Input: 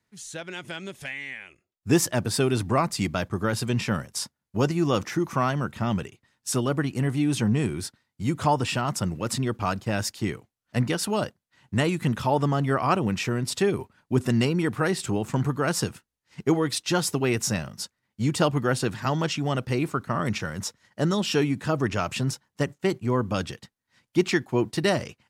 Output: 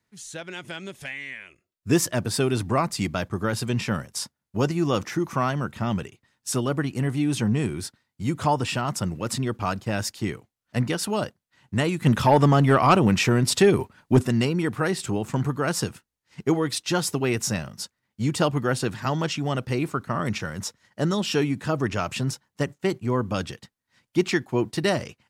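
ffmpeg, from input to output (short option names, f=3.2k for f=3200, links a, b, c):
-filter_complex "[0:a]asettb=1/sr,asplit=3[a][b][c];[a]atrim=end=1.164[d];[b]atrim=start=1.16:end=2.2,asetpts=PTS-STARTPTS,afade=t=in:d=0.004:c=qsin,afade=t=out:st=1.036:d=0.004:c=qsin,asuperstop=centerf=810:order=4:qfactor=7.1[e];[c]atrim=start=2.196[f];[d][e]acrossfade=d=0.004:c1=hsin:c2=qsin[g];[g][f]acrossfade=d=0.004:c1=qsin:c2=hsin,asplit=3[h][i][j];[h]afade=t=out:st=12.05:d=0.02[k];[i]aeval=exprs='0.376*sin(PI/2*1.41*val(0)/0.376)':c=same,afade=t=in:st=12.05:d=0.02,afade=t=out:st=14.22:d=0.02[l];[j]afade=t=in:st=14.22:d=0.02[m];[k][l][m]amix=inputs=3:normalize=0"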